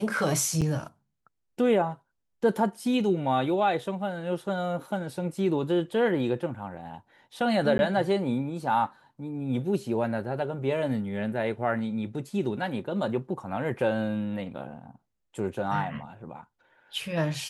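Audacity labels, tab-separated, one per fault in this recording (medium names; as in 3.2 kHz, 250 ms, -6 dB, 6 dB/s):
0.610000	0.620000	dropout 7 ms
7.780000	7.790000	dropout 11 ms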